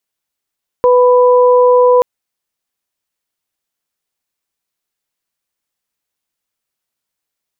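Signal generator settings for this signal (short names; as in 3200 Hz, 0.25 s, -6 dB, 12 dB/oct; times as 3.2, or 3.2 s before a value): steady additive tone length 1.18 s, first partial 496 Hz, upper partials -6.5 dB, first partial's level -6 dB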